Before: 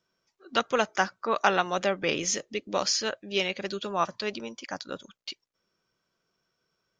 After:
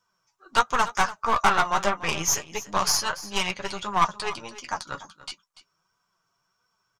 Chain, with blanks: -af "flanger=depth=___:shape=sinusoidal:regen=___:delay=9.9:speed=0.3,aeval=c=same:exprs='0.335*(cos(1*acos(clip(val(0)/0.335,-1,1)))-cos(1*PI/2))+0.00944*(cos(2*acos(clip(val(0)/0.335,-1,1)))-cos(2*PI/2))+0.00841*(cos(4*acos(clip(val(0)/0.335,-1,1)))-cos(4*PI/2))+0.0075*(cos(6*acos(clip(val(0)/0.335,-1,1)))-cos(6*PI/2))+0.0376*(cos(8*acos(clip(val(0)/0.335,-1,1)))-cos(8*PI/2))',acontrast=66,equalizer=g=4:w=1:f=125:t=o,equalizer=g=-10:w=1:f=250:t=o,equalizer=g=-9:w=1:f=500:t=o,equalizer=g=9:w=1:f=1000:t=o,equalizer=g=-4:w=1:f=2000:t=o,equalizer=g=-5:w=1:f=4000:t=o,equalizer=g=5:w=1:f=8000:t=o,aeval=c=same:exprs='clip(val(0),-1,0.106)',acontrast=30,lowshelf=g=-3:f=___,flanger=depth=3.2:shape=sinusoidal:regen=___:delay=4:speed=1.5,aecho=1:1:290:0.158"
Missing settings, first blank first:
3.3, -30, 170, 44